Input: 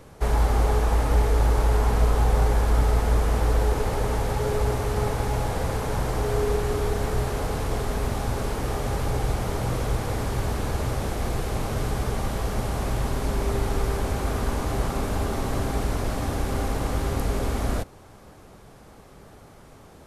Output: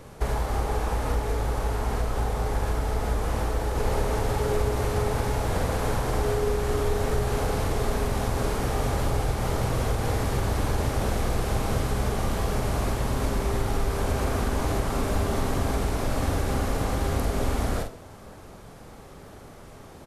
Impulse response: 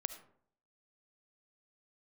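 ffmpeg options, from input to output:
-filter_complex "[0:a]acompressor=threshold=-23dB:ratio=6,asplit=2[a][b];[b]adelay=46,volume=-6dB[c];[a][c]amix=inputs=2:normalize=0,asplit=2[d][e];[1:a]atrim=start_sample=2205[f];[e][f]afir=irnorm=-1:irlink=0,volume=4.5dB[g];[d][g]amix=inputs=2:normalize=0,volume=-6dB"

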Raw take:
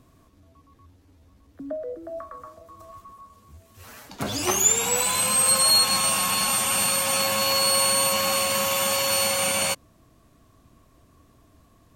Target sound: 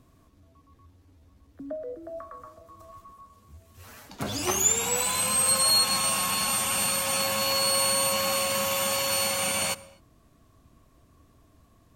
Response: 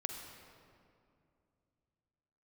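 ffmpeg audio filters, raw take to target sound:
-filter_complex "[0:a]asplit=2[a][b];[1:a]atrim=start_sample=2205,afade=t=out:st=0.31:d=0.01,atrim=end_sample=14112,lowshelf=f=210:g=9[c];[b][c]afir=irnorm=-1:irlink=0,volume=-12.5dB[d];[a][d]amix=inputs=2:normalize=0,volume=-5dB"

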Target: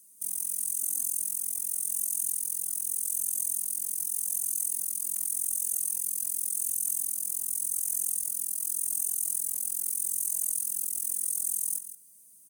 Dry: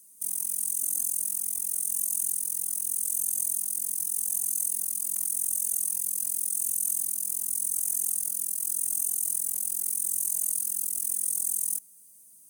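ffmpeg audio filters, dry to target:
-af "equalizer=f=880:w=5.2:g=-11.5,aecho=1:1:163:0.266,volume=-2dB"

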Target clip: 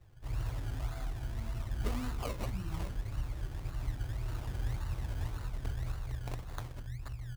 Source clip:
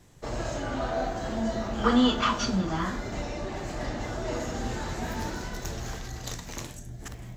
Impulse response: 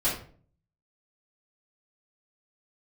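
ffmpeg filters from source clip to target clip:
-af "firequalizer=gain_entry='entry(120,0);entry(210,-24);entry(300,-16);entry(510,-28);entry(950,-16);entry(1500,-14);entry(3100,-28);entry(4400,-13);entry(7000,-5)':delay=0.05:min_phase=1,acrusher=samples=22:mix=1:aa=0.000001:lfo=1:lforange=13.2:lforate=1.8,volume=1dB"

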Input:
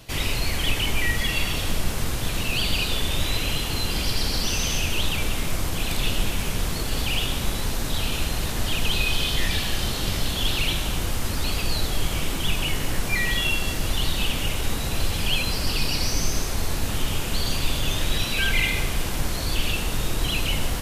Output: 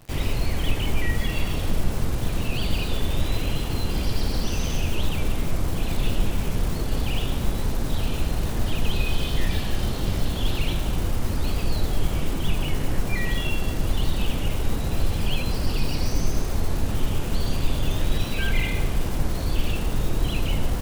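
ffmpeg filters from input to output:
-af "tiltshelf=f=1.2k:g=6,acrusher=bits=7:dc=4:mix=0:aa=0.000001,volume=-3.5dB"

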